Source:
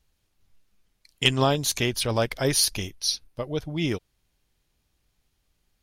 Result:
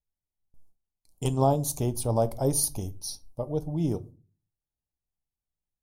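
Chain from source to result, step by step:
noise gate with hold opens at −51 dBFS
drawn EQ curve 130 Hz 0 dB, 430 Hz −3 dB, 850 Hz +2 dB, 1,800 Hz −28 dB, 3,300 Hz −21 dB, 9,100 Hz −1 dB
rectangular room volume 180 cubic metres, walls furnished, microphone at 0.37 metres

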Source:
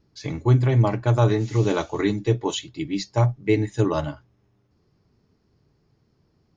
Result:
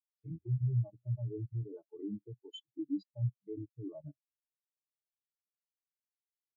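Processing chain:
downward compressor 12 to 1, threshold −30 dBFS, peak gain reduction 18 dB
high-pass filter 73 Hz 12 dB per octave
low-shelf EQ 110 Hz −2.5 dB
output level in coarse steps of 13 dB
high-shelf EQ 2,900 Hz +4.5 dB
every bin expanded away from the loudest bin 4 to 1
level +1 dB

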